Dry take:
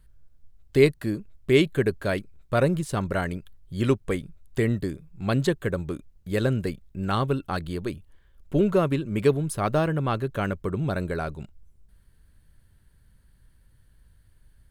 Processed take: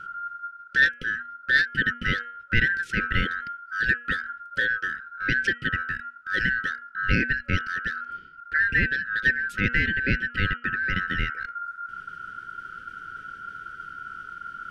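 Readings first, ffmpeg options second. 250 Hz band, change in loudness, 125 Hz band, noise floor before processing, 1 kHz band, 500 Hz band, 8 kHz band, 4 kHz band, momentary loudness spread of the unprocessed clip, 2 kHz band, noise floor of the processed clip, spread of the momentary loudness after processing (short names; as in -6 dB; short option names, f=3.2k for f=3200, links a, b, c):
-8.0 dB, +1.0 dB, -6.0 dB, -59 dBFS, 0.0 dB, -17.0 dB, n/a, +4.0 dB, 12 LU, +14.0 dB, -47 dBFS, 16 LU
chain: -filter_complex "[0:a]asplit=2[a][b];[b]acompressor=threshold=-32dB:ratio=6,volume=-3dB[c];[a][c]amix=inputs=2:normalize=0,lowpass=5.2k,aeval=exprs='val(0)*sin(2*PI*1400*n/s)':c=same,bass=f=250:g=10,treble=f=4k:g=-6,bandreject=f=239.7:t=h:w=4,bandreject=f=479.4:t=h:w=4,bandreject=f=719.1:t=h:w=4,bandreject=f=958.8:t=h:w=4,bandreject=f=1.1985k:t=h:w=4,bandreject=f=1.4382k:t=h:w=4,bandreject=f=1.6779k:t=h:w=4,bandreject=f=1.9176k:t=h:w=4,bandreject=f=2.1573k:t=h:w=4,bandreject=f=2.397k:t=h:w=4,bandreject=f=2.6367k:t=h:w=4,bandreject=f=2.8764k:t=h:w=4,bandreject=f=3.1161k:t=h:w=4,areverse,acompressor=mode=upward:threshold=-28dB:ratio=2.5,areverse,afftfilt=real='re*(1-between(b*sr/4096,560,1300))':imag='im*(1-between(b*sr/4096,560,1300))':win_size=4096:overlap=0.75,volume=3dB"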